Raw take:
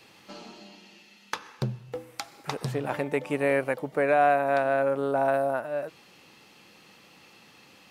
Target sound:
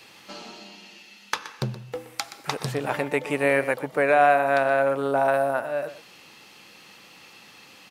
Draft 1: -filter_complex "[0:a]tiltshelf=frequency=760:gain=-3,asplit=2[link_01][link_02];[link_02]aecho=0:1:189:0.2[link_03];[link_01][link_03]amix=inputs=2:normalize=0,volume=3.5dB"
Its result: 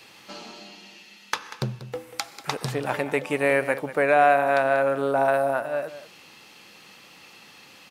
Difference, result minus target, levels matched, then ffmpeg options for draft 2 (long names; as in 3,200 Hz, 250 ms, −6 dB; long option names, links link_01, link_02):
echo 66 ms late
-filter_complex "[0:a]tiltshelf=frequency=760:gain=-3,asplit=2[link_01][link_02];[link_02]aecho=0:1:123:0.2[link_03];[link_01][link_03]amix=inputs=2:normalize=0,volume=3.5dB"